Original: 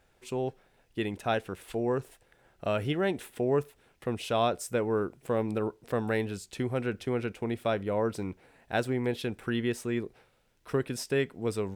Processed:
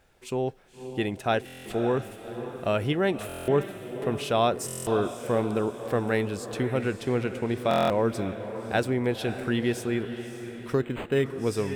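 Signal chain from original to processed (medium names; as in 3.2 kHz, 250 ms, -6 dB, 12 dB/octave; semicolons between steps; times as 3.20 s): echo that smears into a reverb 562 ms, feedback 45%, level -10 dB; buffer glitch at 1.45/3.27/4.66/7.69 s, samples 1024, times 8; 10.74–11.26 s: decimation joined by straight lines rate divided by 8×; trim +3.5 dB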